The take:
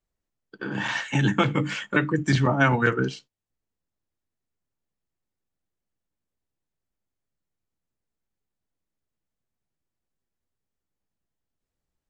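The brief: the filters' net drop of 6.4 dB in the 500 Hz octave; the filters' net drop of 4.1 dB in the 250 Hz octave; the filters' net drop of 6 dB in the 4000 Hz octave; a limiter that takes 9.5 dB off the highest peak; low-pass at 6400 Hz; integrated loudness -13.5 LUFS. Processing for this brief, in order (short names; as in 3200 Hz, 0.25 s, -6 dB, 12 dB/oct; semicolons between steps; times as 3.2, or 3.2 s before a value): LPF 6400 Hz; bell 250 Hz -3.5 dB; bell 500 Hz -7 dB; bell 4000 Hz -8 dB; gain +17 dB; limiter -3 dBFS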